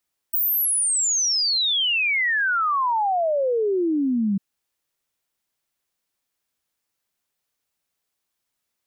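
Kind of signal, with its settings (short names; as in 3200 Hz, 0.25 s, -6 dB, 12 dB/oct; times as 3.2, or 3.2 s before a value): log sweep 16000 Hz -> 190 Hz 4.05 s -18.5 dBFS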